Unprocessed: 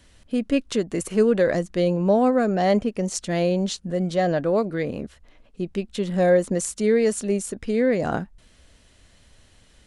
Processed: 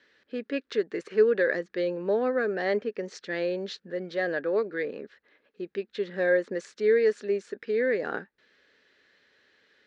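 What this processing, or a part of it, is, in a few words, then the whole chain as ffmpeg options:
phone earpiece: -af "highpass=400,equalizer=frequency=420:width_type=q:width=4:gain=7,equalizer=frequency=690:width_type=q:width=4:gain=-10,equalizer=frequency=1000:width_type=q:width=4:gain=-6,equalizer=frequency=1700:width_type=q:width=4:gain=9,equalizer=frequency=3000:width_type=q:width=4:gain=-5,lowpass=frequency=4400:width=0.5412,lowpass=frequency=4400:width=1.3066,volume=-4dB"

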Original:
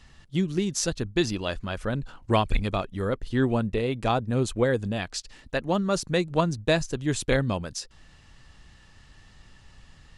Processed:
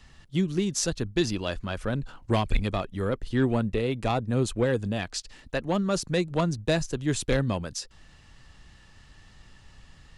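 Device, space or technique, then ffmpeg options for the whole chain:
one-band saturation: -filter_complex "[0:a]acrossover=split=330|3800[link_01][link_02][link_03];[link_02]asoftclip=type=tanh:threshold=-20.5dB[link_04];[link_01][link_04][link_03]amix=inputs=3:normalize=0"

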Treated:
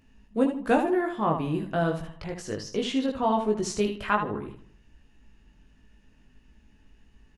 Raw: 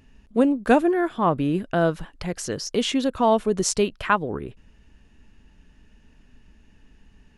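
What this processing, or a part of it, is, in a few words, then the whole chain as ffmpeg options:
slapback doubling: -filter_complex "[0:a]asettb=1/sr,asplit=3[link_01][link_02][link_03];[link_01]atrim=end=2.144[link_04];[link_02]atrim=start=2.14:end=3.8,asetpts=PTS-STARTPTS,afade=type=in:duration=0.004:curve=qsin,afade=type=out:start_time=1.656:duration=0.004:curve=qsin,highshelf=frequency=6600:gain=-11.5[link_05];[link_03]atrim=start=3.796[link_06];[link_04][link_05]acrossfade=duration=0.004:curve1=hsin:curve2=qsin[link_07];[link_07][link_06]acrossfade=duration=0.004:curve1=qsin:curve2=hsin,asplit=3[link_08][link_09][link_10];[link_09]adelay=19,volume=-3dB[link_11];[link_10]adelay=76,volume=-7dB[link_12];[link_08][link_11][link_12]amix=inputs=3:normalize=0,asplit=2[link_13][link_14];[link_14]adelay=77,lowpass=frequency=3100:poles=1,volume=-13.5dB,asplit=2[link_15][link_16];[link_16]adelay=77,lowpass=frequency=3100:poles=1,volume=0.49,asplit=2[link_17][link_18];[link_18]adelay=77,lowpass=frequency=3100:poles=1,volume=0.49,asplit=2[link_19][link_20];[link_20]adelay=77,lowpass=frequency=3100:poles=1,volume=0.49,asplit=2[link_21][link_22];[link_22]adelay=77,lowpass=frequency=3100:poles=1,volume=0.49[link_23];[link_13][link_15][link_17][link_19][link_21][link_23]amix=inputs=6:normalize=0,volume=-6.5dB"

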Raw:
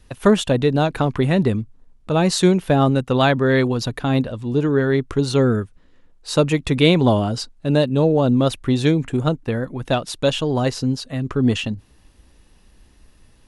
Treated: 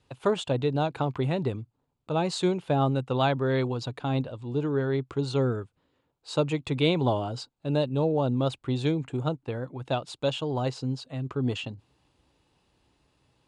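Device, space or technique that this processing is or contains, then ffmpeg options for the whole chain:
car door speaker: -af "highpass=110,equalizer=frequency=130:width_type=q:width=4:gain=4,equalizer=frequency=210:width_type=q:width=4:gain=-9,equalizer=frequency=860:width_type=q:width=4:gain=4,equalizer=frequency=1800:width_type=q:width=4:gain=-7,equalizer=frequency=5800:width_type=q:width=4:gain=-8,lowpass=frequency=7900:width=0.5412,lowpass=frequency=7900:width=1.3066,volume=-8.5dB"

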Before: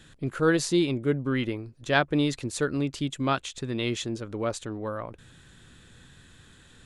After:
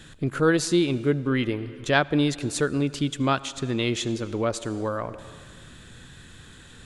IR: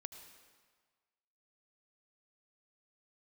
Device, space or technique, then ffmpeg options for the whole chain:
ducked reverb: -filter_complex "[0:a]asplit=3[link_01][link_02][link_03];[1:a]atrim=start_sample=2205[link_04];[link_02][link_04]afir=irnorm=-1:irlink=0[link_05];[link_03]apad=whole_len=302428[link_06];[link_05][link_06]sidechaincompress=threshold=-30dB:ratio=6:attack=11:release=607,volume=5.5dB[link_07];[link_01][link_07]amix=inputs=2:normalize=0"

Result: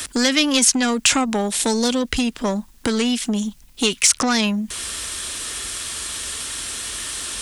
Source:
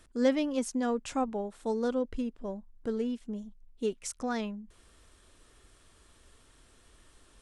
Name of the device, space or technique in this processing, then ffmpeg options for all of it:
mastering chain: -filter_complex "[0:a]asettb=1/sr,asplit=3[link_01][link_02][link_03];[link_01]atrim=end=1.484[link_04];[link_02]atrim=start=1.48:end=2.03,asetpts=PTS-STARTPTS,afade=type=in:duration=0.004:curve=qsin,afade=type=out:start_time=0.546:duration=0.004:curve=qsin,equalizer=frequency=1300:width_type=o:width=0.64:gain=-12.5[link_05];[link_03]atrim=start=2.026[link_06];[link_04][link_05]acrossfade=duration=0.004:curve1=hsin:curve2=qsin[link_07];[link_07][link_06]acrossfade=duration=0.004:curve1=qsin:curve2=hsin,highpass=44,equalizer=frequency=240:width_type=o:width=0.77:gain=2.5,acrossover=split=230|1000|4200[link_08][link_09][link_10][link_11];[link_08]acompressor=threshold=-38dB:ratio=4[link_12];[link_09]acompressor=threshold=-41dB:ratio=4[link_13];[link_10]acompressor=threshold=-47dB:ratio=4[link_14];[link_11]acompressor=threshold=-51dB:ratio=4[link_15];[link_12][link_13][link_14][link_15]amix=inputs=4:normalize=0,acompressor=threshold=-37dB:ratio=3,asoftclip=type=tanh:threshold=-34dB,tiltshelf=frequency=1400:gain=-9.5,alimiter=level_in=32dB:limit=-1dB:release=50:level=0:latency=1,volume=-3dB"

